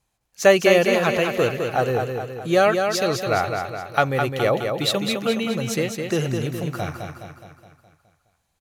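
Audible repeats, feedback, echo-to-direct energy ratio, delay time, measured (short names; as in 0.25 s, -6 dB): 6, 53%, -4.0 dB, 0.209 s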